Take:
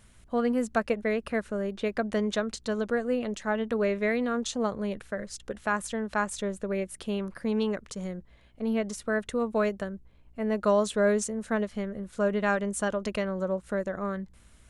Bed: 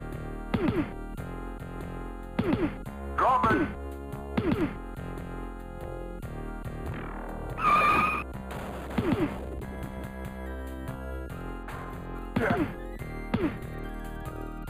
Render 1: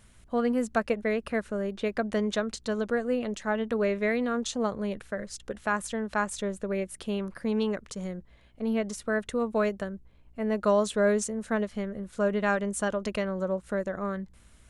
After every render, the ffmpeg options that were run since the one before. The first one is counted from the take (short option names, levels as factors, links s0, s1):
-af anull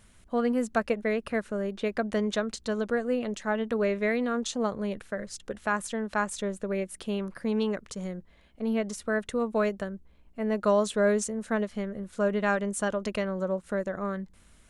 -af "bandreject=f=60:t=h:w=4,bandreject=f=120:t=h:w=4"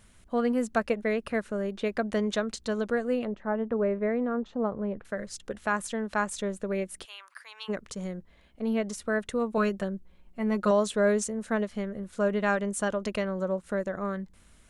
-filter_complex "[0:a]asettb=1/sr,asplit=3[s0][s1][s2];[s0]atrim=end=3.254[s3];[s1]atrim=start=3.25:end=5.05,asetpts=PTS-STARTPTS,afade=t=in:d=0.004:c=qsin,afade=t=out:st=1.796:d=0.004:c=qsin,lowpass=1200[s4];[s2]atrim=start=5.046[s5];[s3][s4]acrossfade=d=0.004:c1=hsin:c2=qsin[s6];[s6][s5]acrossfade=d=0.004:c1=qsin:c2=hsin,asplit=3[s7][s8][s9];[s7]afade=t=out:st=7.04:d=0.02[s10];[s8]highpass=f=1100:w=0.5412,highpass=f=1100:w=1.3066,afade=t=in:st=7.04:d=0.02,afade=t=out:st=7.68:d=0.02[s11];[s9]afade=t=in:st=7.68:d=0.02[s12];[s10][s11][s12]amix=inputs=3:normalize=0,asettb=1/sr,asplit=3[s13][s14][s15];[s13]atrim=end=9.574[s16];[s14]atrim=start=9.57:end=10.71,asetpts=PTS-STARTPTS,afade=t=in:d=0.004:c=qsin,afade=t=out:st=1.136:d=0.004:c=qsin,aecho=1:1:5.5:0.6,atrim=end_sample=50274[s17];[s15]atrim=start=10.706[s18];[s16][s17]acrossfade=d=0.004:c1=hsin:c2=qsin[s19];[s19][s18]acrossfade=d=0.004:c1=qsin:c2=hsin"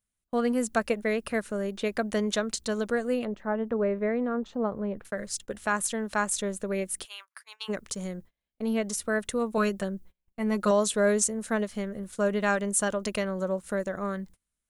-af "agate=range=0.0282:threshold=0.00501:ratio=16:detection=peak,aemphasis=mode=production:type=50kf"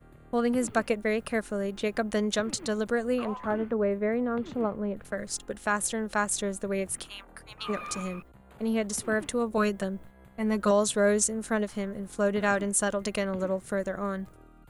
-filter_complex "[1:a]volume=0.15[s0];[0:a][s0]amix=inputs=2:normalize=0"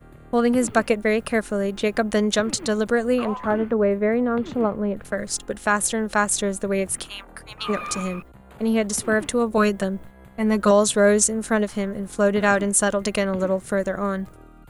-af "volume=2.24"